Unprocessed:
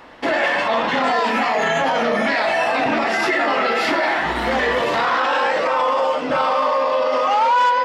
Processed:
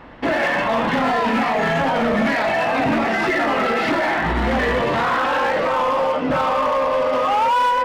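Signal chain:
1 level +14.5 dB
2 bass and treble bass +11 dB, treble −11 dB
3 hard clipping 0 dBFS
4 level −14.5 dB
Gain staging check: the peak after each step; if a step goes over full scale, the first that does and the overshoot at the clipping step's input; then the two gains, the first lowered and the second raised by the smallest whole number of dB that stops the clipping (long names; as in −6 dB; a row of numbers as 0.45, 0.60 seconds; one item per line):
+6.5, +8.5, 0.0, −14.5 dBFS
step 1, 8.5 dB
step 1 +5.5 dB, step 4 −5.5 dB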